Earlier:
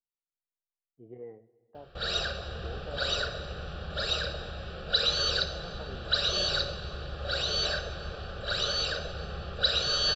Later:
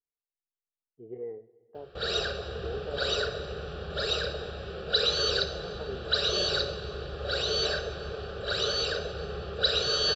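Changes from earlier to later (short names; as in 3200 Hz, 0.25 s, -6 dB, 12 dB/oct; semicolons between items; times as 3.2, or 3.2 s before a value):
background: add HPF 50 Hz; master: add bell 420 Hz +12 dB 0.35 oct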